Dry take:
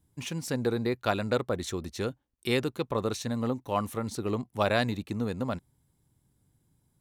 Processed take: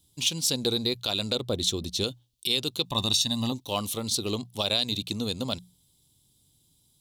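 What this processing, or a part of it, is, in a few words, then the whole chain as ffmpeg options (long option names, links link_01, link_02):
over-bright horn tweeter: -filter_complex "[0:a]bandreject=frequency=60:width_type=h:width=6,bandreject=frequency=120:width_type=h:width=6,bandreject=frequency=180:width_type=h:width=6,asettb=1/sr,asplit=3[link_01][link_02][link_03];[link_01]atrim=end=1.354[link_04];[link_02]atrim=start=1.35:end=2.04,asetpts=PTS-STARTPTS,afade=type=in:duration=0.004:curve=qsin,afade=type=out:start_time=0.686:duration=0.004:curve=qsin,tiltshelf=frequency=720:gain=4[link_05];[link_03]atrim=start=2.036[link_06];[link_04][link_05]acrossfade=duration=0.004:curve1=hsin:curve2=qsin[link_07];[link_07][link_06]acrossfade=duration=0.004:curve1=qsin:curve2=hsin,asettb=1/sr,asplit=3[link_08][link_09][link_10];[link_08]atrim=end=2.854[link_11];[link_09]atrim=start=2.85:end=3.52,asetpts=PTS-STARTPTS,afade=type=in:duration=0.004:curve=qsin,afade=type=out:start_time=0.666:duration=0.004:curve=qsin,aecho=1:1:1.1:0.76,atrim=end_sample=29547[link_12];[link_10]atrim=start=3.516[link_13];[link_11][link_12]acrossfade=duration=0.004:curve1=hsin:curve2=qsin[link_14];[link_14][link_13]acrossfade=duration=0.004:curve1=qsin:curve2=hsin,highshelf=frequency=2500:width_type=q:width=3:gain=12,alimiter=limit=-12dB:level=0:latency=1:release=161"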